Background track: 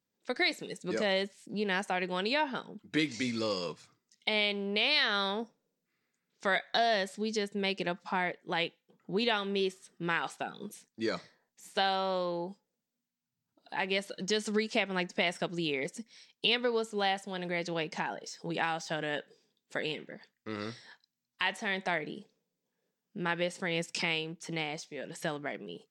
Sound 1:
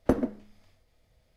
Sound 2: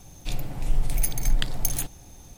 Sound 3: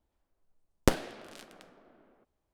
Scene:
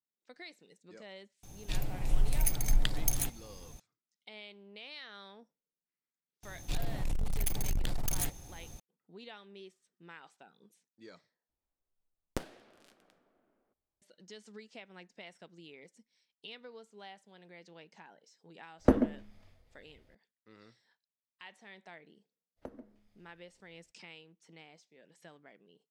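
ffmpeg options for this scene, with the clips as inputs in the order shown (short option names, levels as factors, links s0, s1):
-filter_complex "[2:a]asplit=2[s0][s1];[1:a]asplit=2[s2][s3];[0:a]volume=0.1[s4];[s1]asoftclip=type=hard:threshold=0.0631[s5];[s2]bass=f=250:g=2,treble=f=4000:g=-5[s6];[s3]acompressor=threshold=0.0251:ratio=5:attack=11:release=500:knee=6:detection=peak[s7];[s4]asplit=2[s8][s9];[s8]atrim=end=11.494[s10];[3:a]atrim=end=2.53,asetpts=PTS-STARTPTS,volume=0.211[s11];[s9]atrim=start=14.016[s12];[s0]atrim=end=2.37,asetpts=PTS-STARTPTS,volume=0.596,afade=t=in:d=0.004:c=hsin,afade=t=out:st=2.366:d=0.004:c=hsin,adelay=1430[s13];[s5]atrim=end=2.37,asetpts=PTS-STARTPTS,volume=0.75,afade=t=in:d=0.004:c=hsin,afade=t=out:st=2.366:d=0.004:c=hsin,adelay=6430[s14];[s6]atrim=end=1.36,asetpts=PTS-STARTPTS,volume=0.944,afade=t=in:d=0.004:c=hsin,afade=t=out:st=1.356:d=0.004:c=hsin,adelay=18790[s15];[s7]atrim=end=1.36,asetpts=PTS-STARTPTS,volume=0.237,afade=t=in:d=0.02,afade=t=out:st=1.34:d=0.02,adelay=22560[s16];[s10][s11]acrossfade=d=0.004:c1=hsin:c2=hsin[s17];[s17][s12]acrossfade=d=0.004:c1=hsin:c2=hsin[s18];[s18][s13][s14][s15][s16]amix=inputs=5:normalize=0"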